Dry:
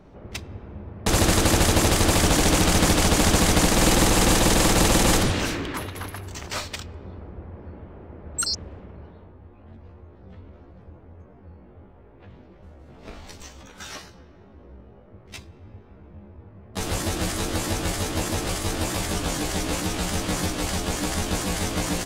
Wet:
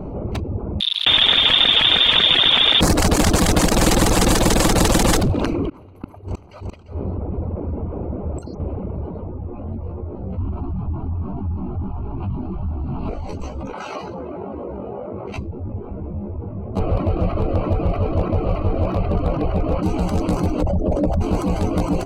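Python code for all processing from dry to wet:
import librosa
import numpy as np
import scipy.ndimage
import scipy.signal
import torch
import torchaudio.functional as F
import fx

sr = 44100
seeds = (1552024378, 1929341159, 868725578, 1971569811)

y = fx.chain(x, sr, fx.freq_invert(carrier_hz=3600),
    fx.env_flatten(amount_pct=50), at=(0.8, 2.81))
y = fx.chain(y, sr, fx.gate_flip(shuts_db=-26.0, range_db=-31),
    fx.echo_single(ms=346, db=-6.5), at=(5.69, 8.6))
y = fx.chain(y, sr, fx.leveller(passes=3),
    fx.fixed_phaser(hz=1900.0, stages=6), at=(10.38, 13.09))
y = fx.chain(y, sr, fx.highpass(hz=690.0, slope=6),
    fx.high_shelf(hz=5900.0, db=-10.5),
    fx.env_flatten(amount_pct=50), at=(13.73, 15.36))
y = fx.chain(y, sr, fx.lowpass(hz=5100.0, slope=12),
    fx.comb(ms=1.7, depth=0.42),
    fx.resample_linear(factor=6), at=(16.79, 19.83))
y = fx.chain(y, sr, fx.envelope_sharpen(power=2.0),
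    fx.peak_eq(hz=580.0, db=13.0, octaves=0.3), at=(20.62, 21.21))
y = fx.wiener(y, sr, points=25)
y = fx.dereverb_blind(y, sr, rt60_s=0.72)
y = fx.env_flatten(y, sr, amount_pct=50)
y = F.gain(torch.from_numpy(y), 4.0).numpy()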